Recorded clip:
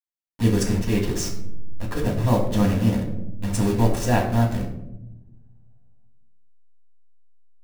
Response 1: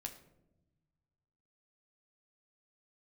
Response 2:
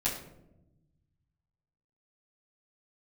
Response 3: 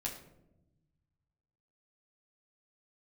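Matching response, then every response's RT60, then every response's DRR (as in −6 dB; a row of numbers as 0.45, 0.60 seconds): 2; 0.95, 0.90, 0.90 seconds; 3.0, −11.5, −3.5 decibels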